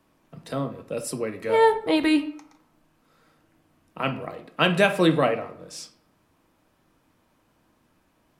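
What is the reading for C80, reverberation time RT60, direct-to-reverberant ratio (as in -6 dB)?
16.0 dB, 0.65 s, 7.0 dB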